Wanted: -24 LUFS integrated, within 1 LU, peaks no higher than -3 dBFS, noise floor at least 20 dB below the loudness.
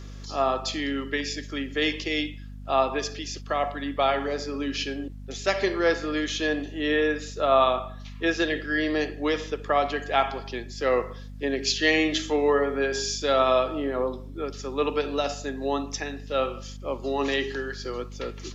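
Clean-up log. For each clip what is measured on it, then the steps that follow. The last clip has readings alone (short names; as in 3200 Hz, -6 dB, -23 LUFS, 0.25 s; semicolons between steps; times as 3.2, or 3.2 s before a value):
hum 50 Hz; harmonics up to 250 Hz; hum level -37 dBFS; loudness -26.5 LUFS; peak -8.5 dBFS; loudness target -24.0 LUFS
-> notches 50/100/150/200/250 Hz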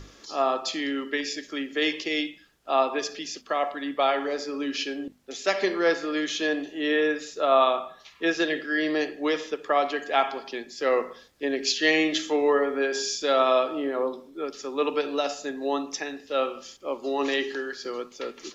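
hum none; loudness -26.5 LUFS; peak -8.5 dBFS; loudness target -24.0 LUFS
-> gain +2.5 dB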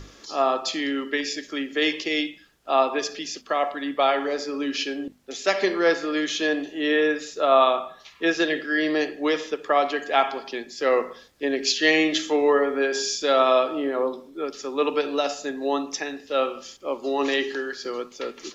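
loudness -24.0 LUFS; peak -6.0 dBFS; noise floor -50 dBFS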